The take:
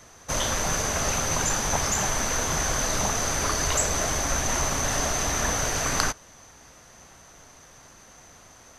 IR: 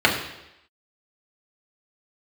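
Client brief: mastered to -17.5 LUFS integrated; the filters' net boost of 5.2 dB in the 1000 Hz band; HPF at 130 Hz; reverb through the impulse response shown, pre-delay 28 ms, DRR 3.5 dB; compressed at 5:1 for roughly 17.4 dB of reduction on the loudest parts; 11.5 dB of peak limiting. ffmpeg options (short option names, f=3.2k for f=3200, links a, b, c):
-filter_complex "[0:a]highpass=130,equalizer=f=1k:t=o:g=6.5,acompressor=threshold=-38dB:ratio=5,alimiter=level_in=7dB:limit=-24dB:level=0:latency=1,volume=-7dB,asplit=2[a][b];[1:a]atrim=start_sample=2205,adelay=28[c];[b][c]afir=irnorm=-1:irlink=0,volume=-24.5dB[d];[a][d]amix=inputs=2:normalize=0,volume=22.5dB"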